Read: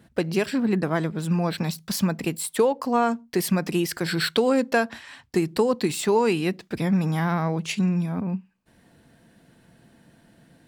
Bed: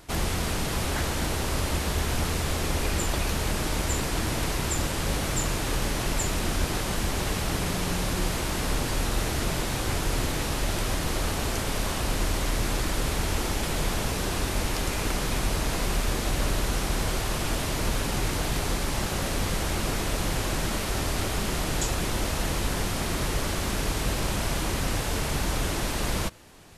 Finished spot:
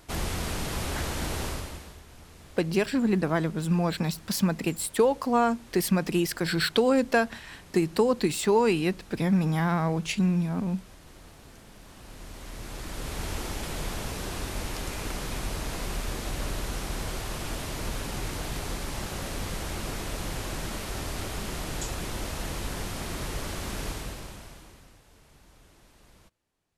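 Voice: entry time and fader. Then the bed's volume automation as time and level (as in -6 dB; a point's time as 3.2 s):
2.40 s, -1.5 dB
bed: 1.46 s -3.5 dB
2.03 s -23 dB
11.79 s -23 dB
13.24 s -6 dB
23.89 s -6 dB
25 s -29.5 dB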